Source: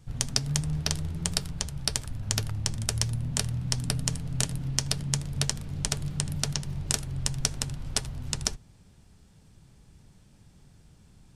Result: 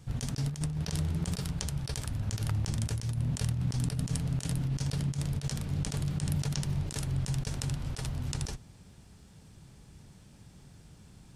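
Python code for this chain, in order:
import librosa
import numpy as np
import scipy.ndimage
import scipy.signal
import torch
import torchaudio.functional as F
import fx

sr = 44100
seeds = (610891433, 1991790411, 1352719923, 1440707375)

y = fx.highpass(x, sr, hz=49.0, slope=6)
y = fx.over_compress(y, sr, threshold_db=-32.0, ratio=-0.5)
y = F.gain(torch.from_numpy(y), 1.5).numpy()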